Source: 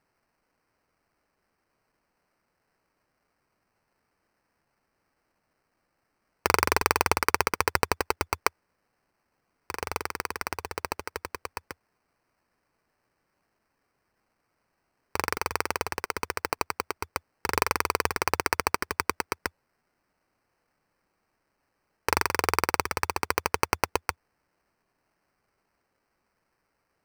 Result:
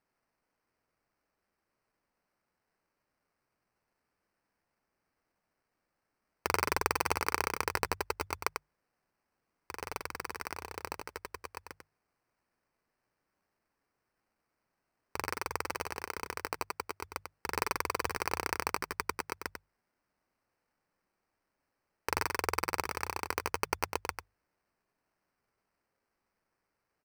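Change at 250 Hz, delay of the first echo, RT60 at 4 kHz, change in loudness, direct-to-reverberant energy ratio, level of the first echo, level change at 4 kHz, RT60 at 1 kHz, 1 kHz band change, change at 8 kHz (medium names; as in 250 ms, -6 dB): -7.5 dB, 95 ms, no reverb, -7.0 dB, no reverb, -7.0 dB, -7.5 dB, no reverb, -7.0 dB, -7.0 dB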